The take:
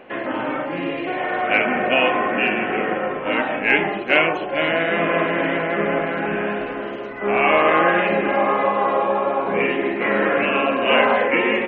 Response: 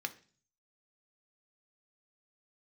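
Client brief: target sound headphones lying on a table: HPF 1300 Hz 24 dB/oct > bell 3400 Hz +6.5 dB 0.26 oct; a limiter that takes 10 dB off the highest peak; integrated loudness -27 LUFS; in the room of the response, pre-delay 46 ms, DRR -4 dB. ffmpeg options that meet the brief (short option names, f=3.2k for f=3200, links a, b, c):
-filter_complex "[0:a]alimiter=limit=-11.5dB:level=0:latency=1,asplit=2[a][b];[1:a]atrim=start_sample=2205,adelay=46[c];[b][c]afir=irnorm=-1:irlink=0,volume=2.5dB[d];[a][d]amix=inputs=2:normalize=0,highpass=f=1.3k:w=0.5412,highpass=f=1.3k:w=1.3066,equalizer=f=3.4k:t=o:w=0.26:g=6.5,volume=-7.5dB"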